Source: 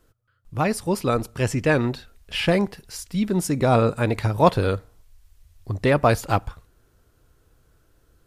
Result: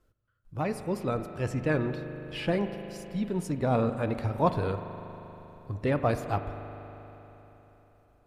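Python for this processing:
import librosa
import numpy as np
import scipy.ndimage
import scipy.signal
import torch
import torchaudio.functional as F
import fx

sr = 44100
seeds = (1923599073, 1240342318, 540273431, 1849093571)

y = fx.spec_quant(x, sr, step_db=15)
y = fx.high_shelf(y, sr, hz=2900.0, db=-8.0)
y = fx.rev_spring(y, sr, rt60_s=3.8, pass_ms=(39,), chirp_ms=25, drr_db=8.5)
y = F.gain(torch.from_numpy(y), -7.5).numpy()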